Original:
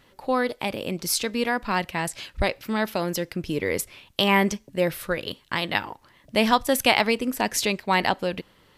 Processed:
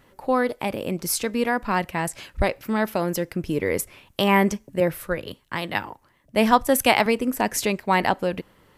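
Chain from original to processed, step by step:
parametric band 3,900 Hz −8 dB 1.4 octaves
0:04.80–0:07.06: multiband upward and downward expander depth 40%
level +2.5 dB

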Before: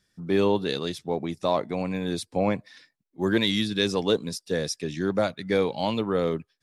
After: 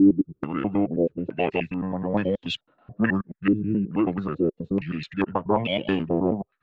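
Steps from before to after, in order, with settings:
slices reordered back to front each 107 ms, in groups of 4
formants moved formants −5 semitones
low-pass on a step sequencer 2.3 Hz 360–3,300 Hz

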